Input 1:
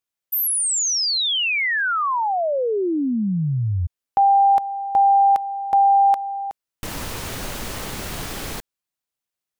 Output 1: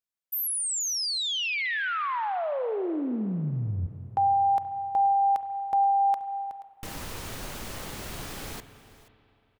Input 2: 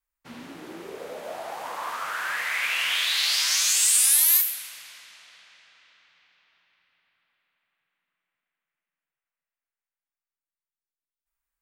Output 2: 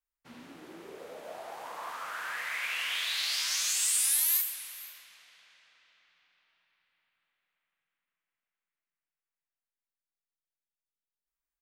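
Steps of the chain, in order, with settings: echo 0.479 s -19 dB; spring tank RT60 2.9 s, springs 32/45 ms, chirp 70 ms, DRR 11 dB; gain -8 dB

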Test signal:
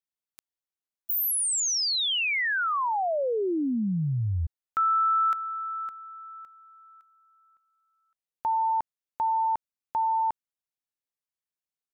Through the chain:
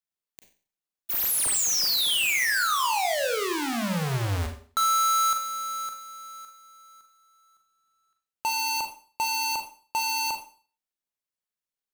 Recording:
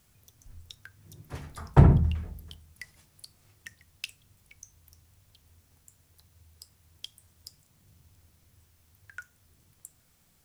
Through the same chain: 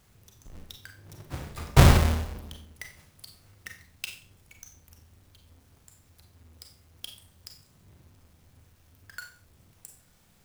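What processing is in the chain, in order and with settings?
half-waves squared off; Schroeder reverb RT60 0.41 s, combs from 30 ms, DRR 4 dB; dynamic EQ 290 Hz, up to -6 dB, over -36 dBFS, Q 0.79; gain -2 dB

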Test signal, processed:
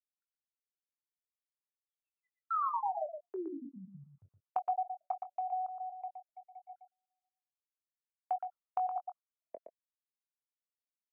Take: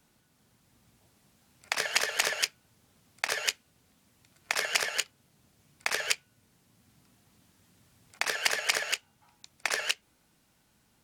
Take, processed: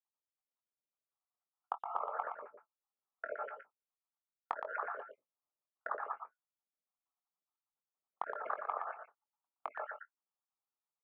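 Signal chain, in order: random spectral dropouts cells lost 60%; Chebyshev low-pass 1300 Hz, order 5; gate -56 dBFS, range -32 dB; HPF 920 Hz 12 dB/oct; compressor 3:1, threshold -46 dBFS; doubler 22 ms -10.5 dB; echo 0.118 s -7 dB; gain +10.5 dB

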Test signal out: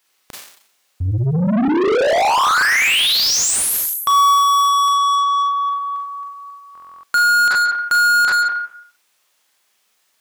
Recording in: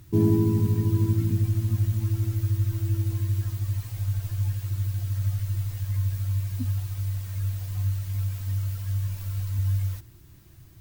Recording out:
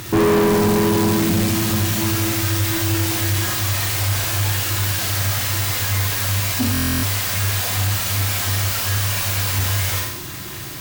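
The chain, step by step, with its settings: Schroeder reverb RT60 0.61 s, combs from 30 ms, DRR 0 dB; overdrive pedal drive 35 dB, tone 7200 Hz, clips at -9 dBFS; stuck buffer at 6.73, samples 1024, times 12

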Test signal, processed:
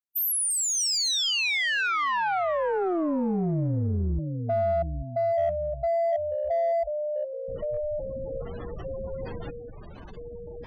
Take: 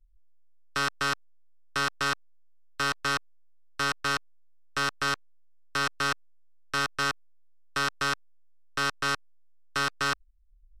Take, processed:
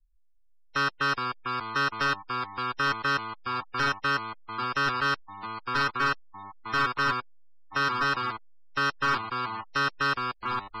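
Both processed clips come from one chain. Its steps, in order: echoes that change speed 0.325 s, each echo -2 st, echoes 3, each echo -6 dB; spectral gate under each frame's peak -15 dB strong; in parallel at -6 dB: hard clip -28 dBFS; on the sum: spectral noise reduction 10 dB

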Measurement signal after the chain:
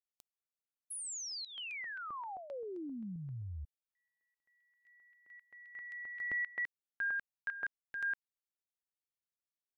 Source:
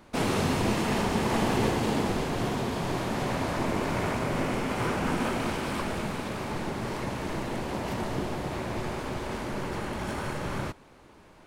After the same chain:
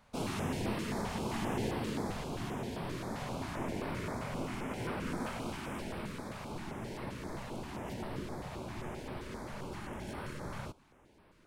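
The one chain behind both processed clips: stepped notch 7.6 Hz 330–6700 Hz; gain -8.5 dB

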